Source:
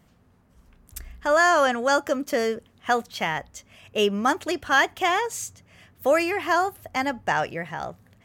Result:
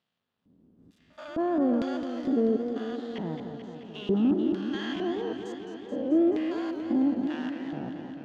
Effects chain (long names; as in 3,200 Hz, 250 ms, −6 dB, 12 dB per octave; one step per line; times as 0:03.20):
spectrum averaged block by block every 200 ms
high-pass filter 120 Hz 12 dB per octave
spectral tilt −4 dB per octave
notch filter 2,200 Hz, Q 13
leveller curve on the samples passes 1
auto-filter band-pass square 1.1 Hz 290–3,600 Hz
backwards echo 80 ms −22 dB
feedback echo with a swinging delay time 217 ms, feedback 74%, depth 117 cents, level −8 dB